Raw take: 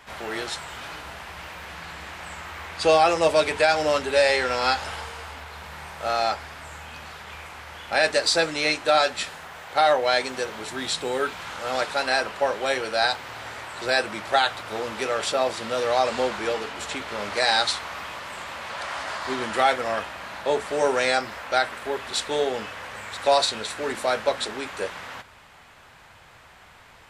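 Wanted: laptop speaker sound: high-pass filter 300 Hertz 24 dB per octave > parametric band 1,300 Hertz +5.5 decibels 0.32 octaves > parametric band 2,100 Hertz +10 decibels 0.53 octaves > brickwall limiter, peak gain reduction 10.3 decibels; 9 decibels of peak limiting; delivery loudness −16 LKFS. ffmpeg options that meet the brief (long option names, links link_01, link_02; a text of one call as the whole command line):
ffmpeg -i in.wav -af "alimiter=limit=-15.5dB:level=0:latency=1,highpass=frequency=300:width=0.5412,highpass=frequency=300:width=1.3066,equalizer=frequency=1300:width_type=o:width=0.32:gain=5.5,equalizer=frequency=2100:width_type=o:width=0.53:gain=10,volume=13dB,alimiter=limit=-6.5dB:level=0:latency=1" out.wav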